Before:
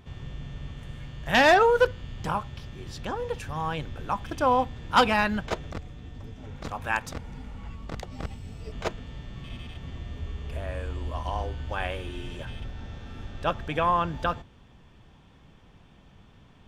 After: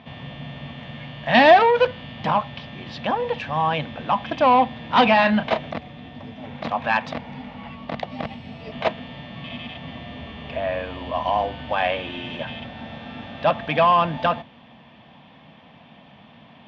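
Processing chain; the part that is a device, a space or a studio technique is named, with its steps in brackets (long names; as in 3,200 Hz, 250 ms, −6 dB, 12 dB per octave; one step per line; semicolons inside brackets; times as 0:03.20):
0:05.13–0:05.69: double-tracking delay 32 ms −10.5 dB
overdrive pedal into a guitar cabinet (mid-hump overdrive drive 16 dB, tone 4,400 Hz, clips at −10 dBFS; loudspeaker in its box 100–3,900 Hz, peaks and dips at 150 Hz +5 dB, 230 Hz +9 dB, 390 Hz −10 dB, 660 Hz +6 dB, 1,400 Hz −9 dB)
level +2.5 dB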